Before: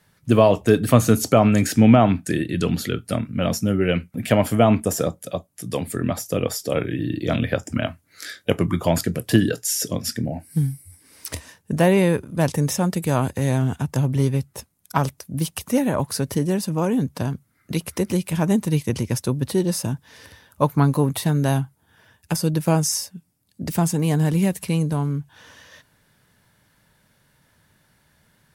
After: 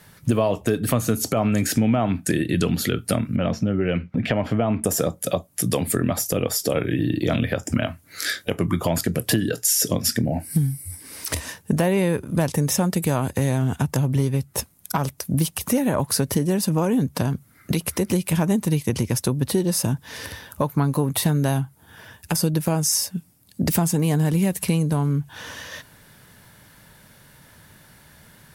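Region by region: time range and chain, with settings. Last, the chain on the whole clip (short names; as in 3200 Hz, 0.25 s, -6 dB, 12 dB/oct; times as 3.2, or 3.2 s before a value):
3.36–4.84 compressor 1.5:1, threshold -30 dBFS + air absorption 230 m
whole clip: compressor 5:1, threshold -29 dBFS; bell 13000 Hz +4 dB 0.71 oct; maximiser +18 dB; gain -7.5 dB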